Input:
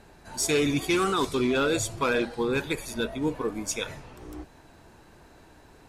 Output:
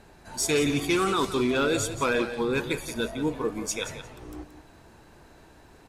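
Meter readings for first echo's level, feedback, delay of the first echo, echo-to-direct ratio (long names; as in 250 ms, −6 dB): −11.5 dB, 18%, 176 ms, −11.5 dB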